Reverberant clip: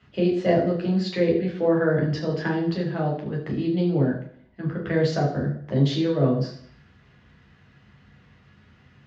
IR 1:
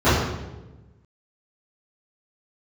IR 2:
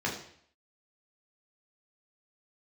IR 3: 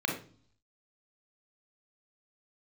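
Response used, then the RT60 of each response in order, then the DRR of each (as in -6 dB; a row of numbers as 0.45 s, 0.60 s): 2; 1.1 s, 0.60 s, 0.45 s; -18.0 dB, -3.5 dB, 0.5 dB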